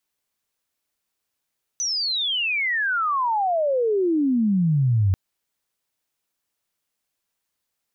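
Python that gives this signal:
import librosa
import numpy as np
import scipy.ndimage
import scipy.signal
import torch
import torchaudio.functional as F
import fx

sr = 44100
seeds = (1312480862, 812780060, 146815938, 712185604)

y = fx.chirp(sr, length_s=3.34, from_hz=6100.0, to_hz=91.0, law='logarithmic', from_db=-22.0, to_db=-15.5)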